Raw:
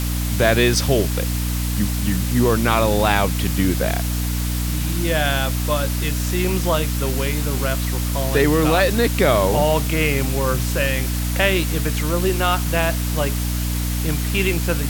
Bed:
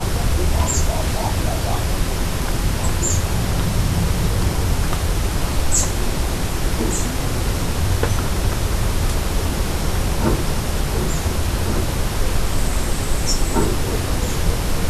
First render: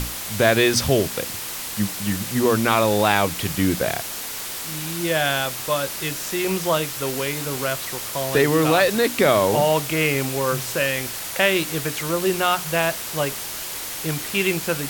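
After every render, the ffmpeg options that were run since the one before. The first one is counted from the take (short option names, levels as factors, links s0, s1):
-af "bandreject=f=60:t=h:w=6,bandreject=f=120:t=h:w=6,bandreject=f=180:t=h:w=6,bandreject=f=240:t=h:w=6,bandreject=f=300:t=h:w=6"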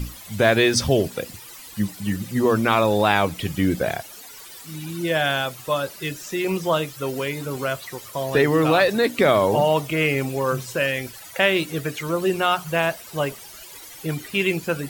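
-af "afftdn=nr=15:nf=-31"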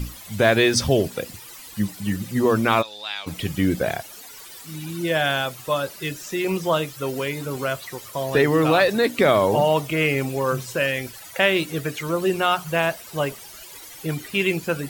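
-filter_complex "[0:a]asplit=3[s0][s1][s2];[s0]afade=t=out:st=2.81:d=0.02[s3];[s1]bandpass=f=4000:t=q:w=2.2,afade=t=in:st=2.81:d=0.02,afade=t=out:st=3.26:d=0.02[s4];[s2]afade=t=in:st=3.26:d=0.02[s5];[s3][s4][s5]amix=inputs=3:normalize=0"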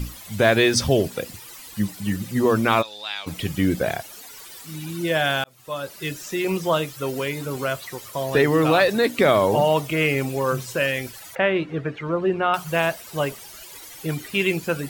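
-filter_complex "[0:a]asettb=1/sr,asplit=3[s0][s1][s2];[s0]atrim=end=11.354[s3];[s1]atrim=start=11.35:end=12.54,asetpts=PTS-STARTPTS,afade=t=in:d=0.004:c=qsin,afade=t=out:st=1.186:d=0.004:c=qsin,lowpass=1900[s4];[s2]atrim=start=12.536[s5];[s3][s4]acrossfade=d=0.004:c1=hsin:c2=qsin[s6];[s6][s5]acrossfade=d=0.004:c1=qsin:c2=hsin,asplit=2[s7][s8];[s7]atrim=end=5.44,asetpts=PTS-STARTPTS,afade=t=out:st=5.436:d=0.004:c=hsin[s9];[s8]atrim=start=5.44,asetpts=PTS-STARTPTS,afade=t=in:d=0.66[s10];[s9][s10]concat=n=2:v=0:a=1"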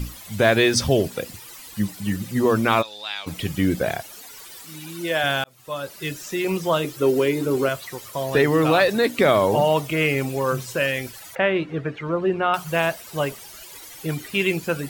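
-filter_complex "[0:a]asettb=1/sr,asplit=3[s0][s1][s2];[s0]atrim=end=4.654[s3];[s1]atrim=start=4.65:end=5.24,asetpts=PTS-STARTPTS,afade=t=in:d=0.004:c=qsin,afade=t=out:st=0.586:d=0.004:c=qsin,highpass=f=340:p=1[s4];[s2]atrim=start=5.236[s5];[s3][s4]acrossfade=d=0.004:c1=hsin:c2=qsin[s6];[s6][s5]acrossfade=d=0.004:c1=qsin:c2=hsin,asettb=1/sr,asplit=3[s7][s8][s9];[s7]atrim=end=6.844[s10];[s8]atrim=start=6.84:end=7.69,asetpts=PTS-STARTPTS,afade=t=in:d=0.004:c=qsin,afade=t=out:st=0.846:d=0.004:c=qsin,equalizer=f=350:t=o:w=0.82:g=13.5[s11];[s9]atrim=start=7.686[s12];[s10][s11]acrossfade=d=0.004:c1=hsin:c2=qsin[s13];[s13][s12]acrossfade=d=0.004:c1=qsin:c2=hsin"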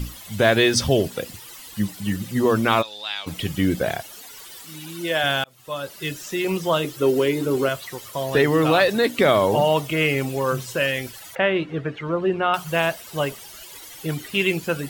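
-af "equalizer=f=3100:t=o:w=0.51:g=3,bandreject=f=2400:w=27"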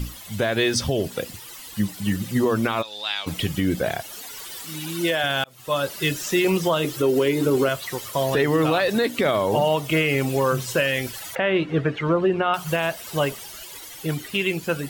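-af "dynaudnorm=f=120:g=31:m=3.76,alimiter=limit=0.266:level=0:latency=1:release=201"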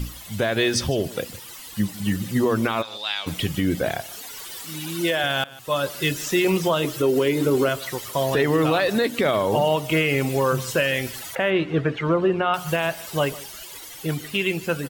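-af "aecho=1:1:152:0.106"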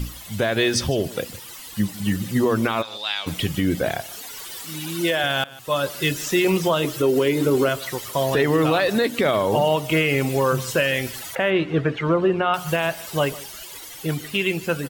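-af "volume=1.12"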